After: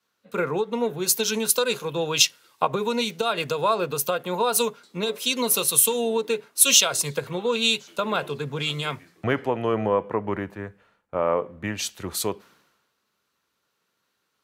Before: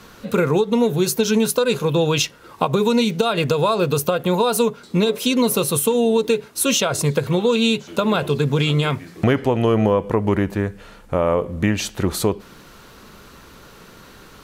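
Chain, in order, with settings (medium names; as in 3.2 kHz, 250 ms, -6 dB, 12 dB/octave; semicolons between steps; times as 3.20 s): high-pass 96 Hz; bass shelf 440 Hz -10.5 dB; three bands expanded up and down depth 100%; trim -2 dB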